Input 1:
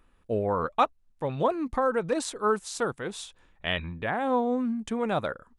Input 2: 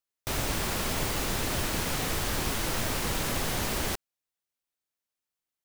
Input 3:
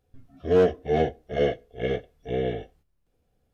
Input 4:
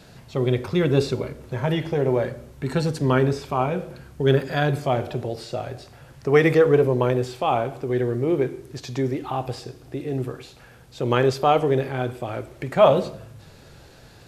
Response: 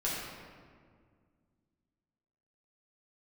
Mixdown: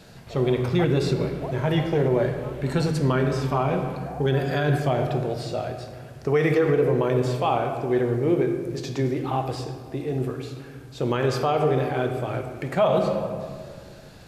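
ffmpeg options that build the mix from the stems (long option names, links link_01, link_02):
-filter_complex "[0:a]bandpass=frequency=710:width_type=q:width=5.2:csg=0,volume=-4dB[link_01];[1:a]lowpass=frequency=3400:width=0.5412,lowpass=frequency=3400:width=1.3066,volume=-16dB[link_02];[3:a]volume=-2.5dB,asplit=2[link_03][link_04];[link_04]volume=-9dB[link_05];[4:a]atrim=start_sample=2205[link_06];[link_05][link_06]afir=irnorm=-1:irlink=0[link_07];[link_01][link_02][link_03][link_07]amix=inputs=4:normalize=0,alimiter=limit=-11.5dB:level=0:latency=1:release=85"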